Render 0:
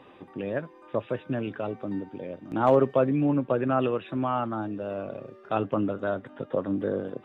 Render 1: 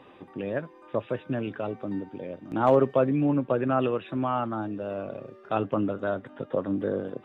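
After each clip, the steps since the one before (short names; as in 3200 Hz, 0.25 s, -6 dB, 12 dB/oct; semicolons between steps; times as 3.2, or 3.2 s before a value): nothing audible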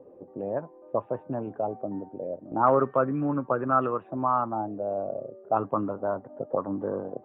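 envelope low-pass 500–1300 Hz up, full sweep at -20.5 dBFS; gain -4 dB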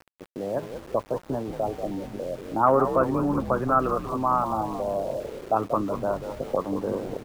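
frequency-shifting echo 0.186 s, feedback 58%, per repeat -81 Hz, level -9 dB; sample gate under -42.5 dBFS; gain +1.5 dB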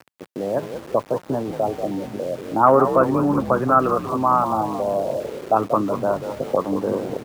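HPF 98 Hz 12 dB/oct; gain +5.5 dB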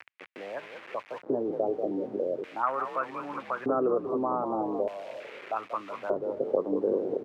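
LFO band-pass square 0.41 Hz 410–2300 Hz; three-band squash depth 40%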